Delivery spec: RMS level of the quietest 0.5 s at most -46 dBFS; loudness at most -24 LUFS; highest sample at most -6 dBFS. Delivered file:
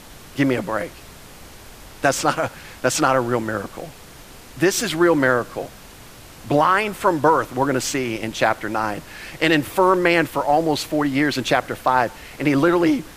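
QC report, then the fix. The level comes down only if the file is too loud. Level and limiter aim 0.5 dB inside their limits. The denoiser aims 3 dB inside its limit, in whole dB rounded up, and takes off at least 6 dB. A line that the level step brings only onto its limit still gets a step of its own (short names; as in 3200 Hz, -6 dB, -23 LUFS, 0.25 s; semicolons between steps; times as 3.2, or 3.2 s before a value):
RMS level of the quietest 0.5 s -42 dBFS: fail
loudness -20.0 LUFS: fail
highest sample -2.0 dBFS: fail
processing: gain -4.5 dB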